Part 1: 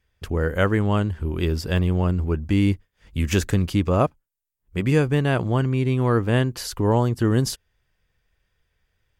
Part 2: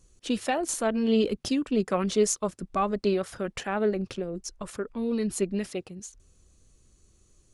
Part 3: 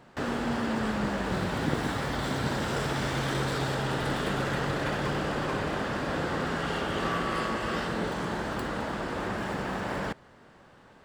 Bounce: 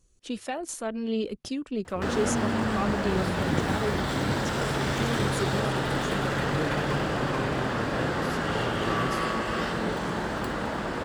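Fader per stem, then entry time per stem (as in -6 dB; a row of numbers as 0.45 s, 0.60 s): -15.0 dB, -5.5 dB, +2.0 dB; 1.65 s, 0.00 s, 1.85 s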